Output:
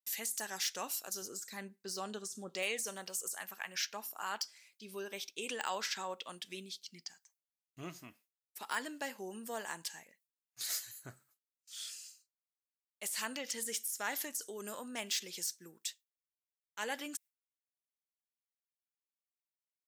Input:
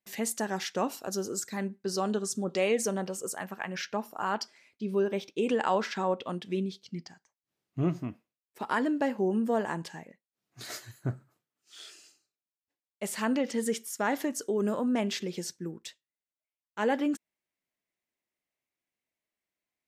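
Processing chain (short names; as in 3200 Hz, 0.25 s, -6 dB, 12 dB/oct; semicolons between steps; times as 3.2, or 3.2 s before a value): de-esser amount 85%; 1.22–2.63 tilt -2 dB/oct; gate with hold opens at -56 dBFS; pre-emphasis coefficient 0.97; gain +7.5 dB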